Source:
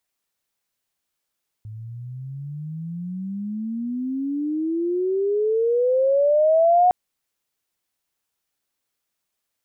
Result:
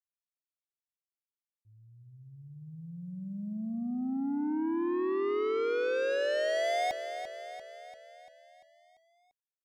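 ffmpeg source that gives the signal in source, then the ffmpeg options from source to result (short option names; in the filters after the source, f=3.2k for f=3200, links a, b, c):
-f lavfi -i "aevalsrc='pow(10,(-12+21*(t/5.26-1))/20)*sin(2*PI*106*5.26/(33.5*log(2)/12)*(exp(33.5*log(2)/12*t/5.26)-1))':d=5.26:s=44100"
-af "agate=range=-33dB:threshold=-23dB:ratio=3:detection=peak,asoftclip=type=tanh:threshold=-29.5dB,aecho=1:1:343|686|1029|1372|1715|2058|2401:0.335|0.191|0.109|0.062|0.0354|0.0202|0.0115"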